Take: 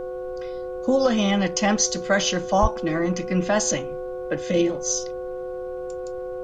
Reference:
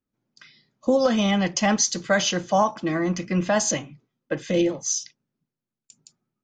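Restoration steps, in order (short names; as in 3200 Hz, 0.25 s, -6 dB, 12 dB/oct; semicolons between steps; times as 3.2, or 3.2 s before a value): de-hum 366.4 Hz, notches 4; notch 510 Hz, Q 30; 2.61–2.73 HPF 140 Hz 24 dB/oct; noise print and reduce 30 dB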